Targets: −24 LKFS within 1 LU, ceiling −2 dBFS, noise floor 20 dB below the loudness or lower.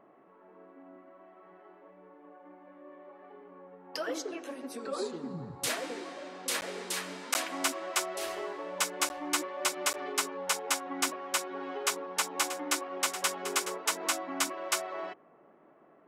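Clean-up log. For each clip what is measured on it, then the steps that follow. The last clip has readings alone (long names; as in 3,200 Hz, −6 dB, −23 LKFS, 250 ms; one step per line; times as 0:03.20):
number of dropouts 4; longest dropout 9.9 ms; integrated loudness −33.0 LKFS; sample peak −12.5 dBFS; target loudness −24.0 LKFS
→ repair the gap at 0:06.61/0:07.34/0:09.09/0:09.93, 9.9 ms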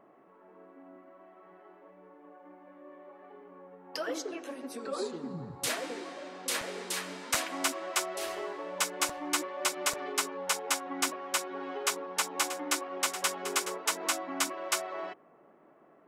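number of dropouts 0; integrated loudness −33.0 LKFS; sample peak −12.5 dBFS; target loudness −24.0 LKFS
→ level +9 dB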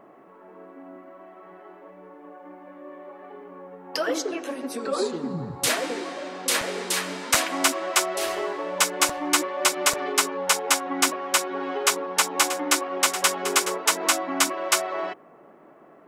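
integrated loudness −24.0 LKFS; sample peak −3.5 dBFS; background noise floor −51 dBFS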